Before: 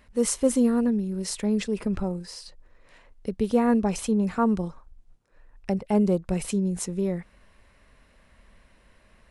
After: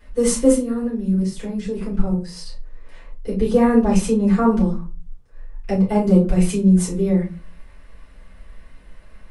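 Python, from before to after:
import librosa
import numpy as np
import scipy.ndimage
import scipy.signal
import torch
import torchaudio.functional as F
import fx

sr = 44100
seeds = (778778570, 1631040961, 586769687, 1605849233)

y = fx.level_steps(x, sr, step_db=15, at=(0.54, 2.36))
y = fx.room_shoebox(y, sr, seeds[0], volume_m3=130.0, walls='furnished', distance_m=4.9)
y = y * librosa.db_to_amplitude(-4.5)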